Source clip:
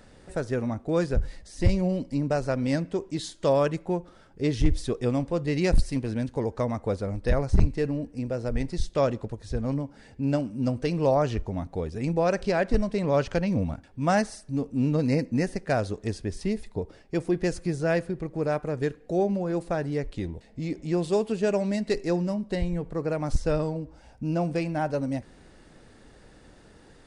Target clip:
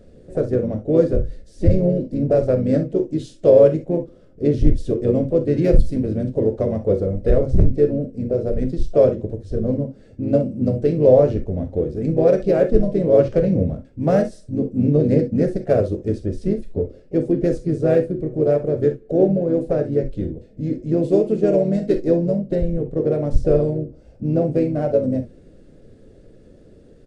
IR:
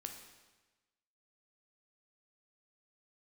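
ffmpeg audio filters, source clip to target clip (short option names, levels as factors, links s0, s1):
-filter_complex "[0:a]asplit=2[s0][s1];[s1]adynamicsmooth=sensitivity=4:basefreq=560,volume=0.794[s2];[s0][s2]amix=inputs=2:normalize=0,asetrate=42845,aresample=44100,atempo=1.0293,lowshelf=f=700:t=q:w=3:g=7.5,asplit=3[s3][s4][s5];[s4]asetrate=35002,aresample=44100,atempo=1.25992,volume=0.355[s6];[s5]asetrate=52444,aresample=44100,atempo=0.840896,volume=0.141[s7];[s3][s6][s7]amix=inputs=3:normalize=0[s8];[1:a]atrim=start_sample=2205,atrim=end_sample=3969,asetrate=52920,aresample=44100[s9];[s8][s9]afir=irnorm=-1:irlink=0,volume=0.794"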